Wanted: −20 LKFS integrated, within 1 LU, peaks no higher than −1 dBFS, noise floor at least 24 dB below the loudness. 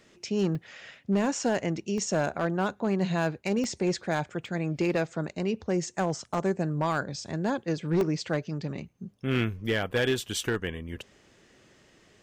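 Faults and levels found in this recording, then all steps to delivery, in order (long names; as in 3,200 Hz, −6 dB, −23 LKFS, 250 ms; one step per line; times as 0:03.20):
share of clipped samples 0.7%; peaks flattened at −19.0 dBFS; number of dropouts 6; longest dropout 1.4 ms; integrated loudness −29.5 LKFS; sample peak −19.0 dBFS; target loudness −20.0 LKFS
→ clipped peaks rebuilt −19 dBFS
repair the gap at 0:00.55/0:01.98/0:03.64/0:04.46/0:06.34/0:08.01, 1.4 ms
level +9.5 dB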